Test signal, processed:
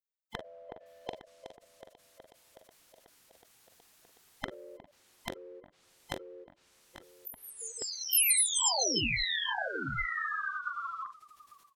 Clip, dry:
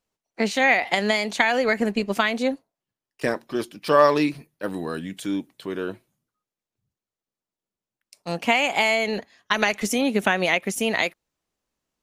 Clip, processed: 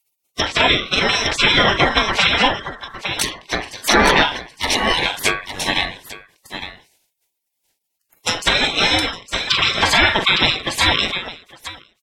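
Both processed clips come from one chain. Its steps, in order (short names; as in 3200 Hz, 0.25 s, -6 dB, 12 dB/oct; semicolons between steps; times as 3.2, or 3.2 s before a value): band-swap scrambler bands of 1000 Hz; treble ducked by the level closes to 1700 Hz, closed at -21 dBFS; dynamic EQ 3500 Hz, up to -3 dB, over -44 dBFS, Q 4.1; on a send: tapped delay 43/54/860 ms -11/-17/-8.5 dB; on the sum: spectral gate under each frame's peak -25 dB weak; maximiser +31 dB; ending taper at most 130 dB/s; gain -1.5 dB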